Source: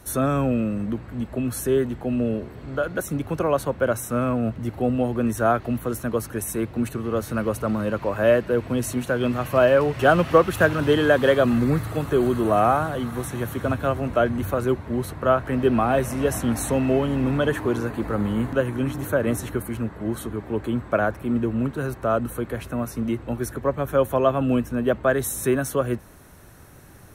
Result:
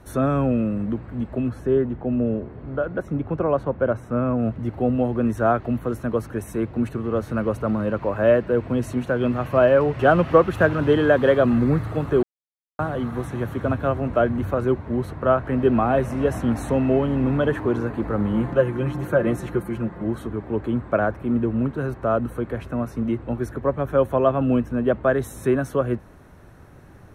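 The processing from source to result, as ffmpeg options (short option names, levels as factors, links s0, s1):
-filter_complex "[0:a]asplit=3[s0][s1][s2];[s0]afade=t=out:st=1.48:d=0.02[s3];[s1]lowpass=f=1700:p=1,afade=t=in:st=1.48:d=0.02,afade=t=out:st=4.38:d=0.02[s4];[s2]afade=t=in:st=4.38:d=0.02[s5];[s3][s4][s5]amix=inputs=3:normalize=0,asettb=1/sr,asplit=3[s6][s7][s8];[s6]atrim=end=18.334[s9];[s7]atrim=start=18.33:end=20.04,asetpts=PTS-STARTPTS,afade=t=in:d=0.004:c=qsin,afade=t=out:st=1.706:d=0.004:c=qsin,aecho=1:1:5.7:0.65,atrim=end_sample=75411[s10];[s8]atrim=start=20.036[s11];[s9][s10]acrossfade=d=0.004:c1=hsin:c2=qsin[s12];[s12][s11]acrossfade=d=0.004:c1=qsin:c2=hsin,asplit=3[s13][s14][s15];[s13]atrim=end=12.23,asetpts=PTS-STARTPTS,afade=t=out:st=12.226:d=0.004:c=hsin[s16];[s14]atrim=start=12.23:end=12.79,asetpts=PTS-STARTPTS,volume=0[s17];[s15]atrim=start=12.79,asetpts=PTS-STARTPTS,afade=t=in:d=0.004:c=hsin[s18];[s16][s17][s18]concat=n=3:v=0:a=1,lowpass=f=1600:p=1,volume=1.19"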